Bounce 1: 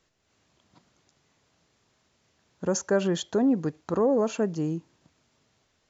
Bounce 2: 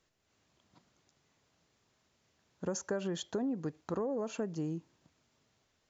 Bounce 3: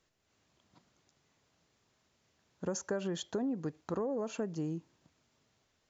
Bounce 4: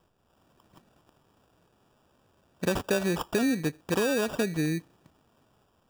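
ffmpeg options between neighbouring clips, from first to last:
ffmpeg -i in.wav -af "acompressor=threshold=-26dB:ratio=6,volume=-5.5dB" out.wav
ffmpeg -i in.wav -af anull out.wav
ffmpeg -i in.wav -af "acrusher=samples=21:mix=1:aa=0.000001,volume=8.5dB" out.wav

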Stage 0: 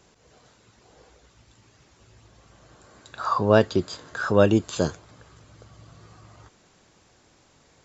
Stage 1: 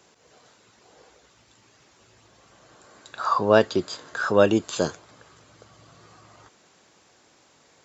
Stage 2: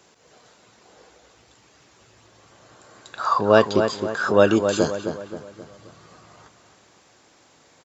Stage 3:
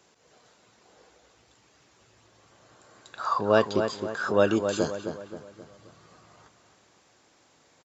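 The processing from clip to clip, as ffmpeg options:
ffmpeg -i in.wav -af "highpass=frequency=300:poles=1,volume=2dB" out.wav
ffmpeg -i in.wav -filter_complex "[0:a]asplit=2[link_01][link_02];[link_02]adelay=264,lowpass=frequency=2400:poles=1,volume=-7dB,asplit=2[link_03][link_04];[link_04]adelay=264,lowpass=frequency=2400:poles=1,volume=0.45,asplit=2[link_05][link_06];[link_06]adelay=264,lowpass=frequency=2400:poles=1,volume=0.45,asplit=2[link_07][link_08];[link_08]adelay=264,lowpass=frequency=2400:poles=1,volume=0.45,asplit=2[link_09][link_10];[link_10]adelay=264,lowpass=frequency=2400:poles=1,volume=0.45[link_11];[link_01][link_03][link_05][link_07][link_09][link_11]amix=inputs=6:normalize=0,volume=2dB" out.wav
ffmpeg -i in.wav -af "aresample=32000,aresample=44100,volume=-6dB" out.wav

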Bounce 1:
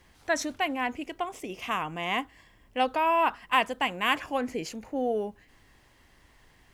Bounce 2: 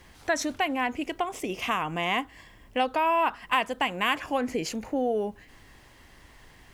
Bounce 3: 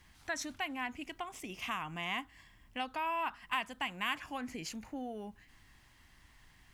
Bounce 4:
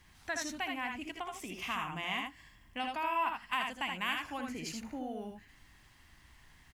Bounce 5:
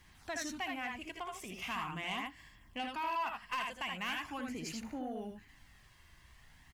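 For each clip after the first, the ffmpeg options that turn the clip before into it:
ffmpeg -i in.wav -af "acompressor=threshold=-33dB:ratio=2,volume=6.5dB" out.wav
ffmpeg -i in.wav -af "equalizer=frequency=480:width_type=o:width=1.1:gain=-12,volume=-8dB" out.wav
ffmpeg -i in.wav -af "aecho=1:1:66|79:0.316|0.596" out.wav
ffmpeg -i in.wav -af "flanger=delay=0:depth=1.9:regen=-49:speed=0.41:shape=sinusoidal,asoftclip=type=tanh:threshold=-32.5dB,volume=3dB" out.wav

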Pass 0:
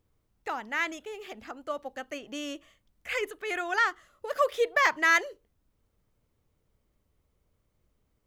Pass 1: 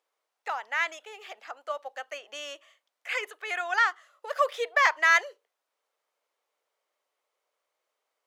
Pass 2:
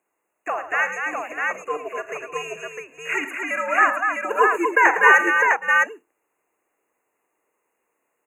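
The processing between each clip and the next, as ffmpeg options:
ffmpeg -i in.wav -af "highpass=frequency=570:width=0.5412,highpass=frequency=570:width=1.3066,highshelf=frequency=11000:gain=-11,volume=2dB" out.wav
ffmpeg -i in.wav -af "aecho=1:1:41|80|108|244|592|655:0.211|0.119|0.251|0.531|0.15|0.708,afftfilt=real='re*(1-between(b*sr/4096,3000,6400))':imag='im*(1-between(b*sr/4096,3000,6400))':win_size=4096:overlap=0.75,afreqshift=-130,volume=6dB" out.wav

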